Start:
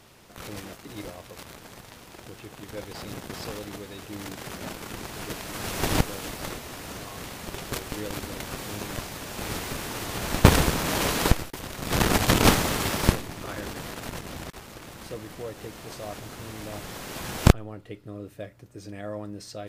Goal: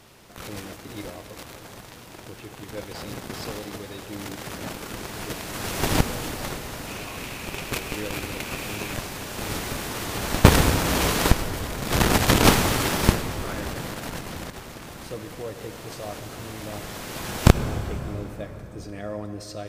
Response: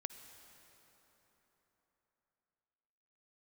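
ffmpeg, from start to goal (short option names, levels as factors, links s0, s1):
-filter_complex "[0:a]asettb=1/sr,asplit=3[s0][s1][s2];[s0]atrim=end=6.874[s3];[s1]atrim=start=6.87:end=8.94,asetpts=PTS-STARTPTS,afade=t=in:d=0.004:c=qsin,afade=t=out:st=2.066:d=0.004:c=qsin,equalizer=f=2500:w=4:g=9[s4];[s2]atrim=start=8.936[s5];[s3][s4]acrossfade=d=0.004:c1=hsin:c2=qsin[s6];[s6][s5]acrossfade=d=0.004:c1=qsin:c2=hsin[s7];[1:a]atrim=start_sample=2205[s8];[s7][s8]afir=irnorm=-1:irlink=0,volume=1.78"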